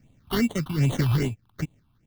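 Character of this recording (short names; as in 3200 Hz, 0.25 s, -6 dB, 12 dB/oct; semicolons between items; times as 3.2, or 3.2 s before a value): random-step tremolo 3.9 Hz, depth 65%; aliases and images of a low sample rate 2500 Hz, jitter 0%; phasing stages 6, 2.5 Hz, lowest notch 490–1500 Hz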